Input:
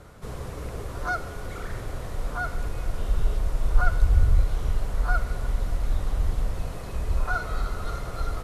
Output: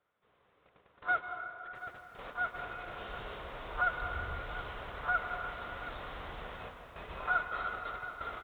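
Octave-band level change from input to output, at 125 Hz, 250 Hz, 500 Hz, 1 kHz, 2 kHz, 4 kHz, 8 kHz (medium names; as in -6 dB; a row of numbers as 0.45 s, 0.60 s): -22.0 dB, -13.5 dB, -7.0 dB, -2.0 dB, -1.0 dB, -4.5 dB, no reading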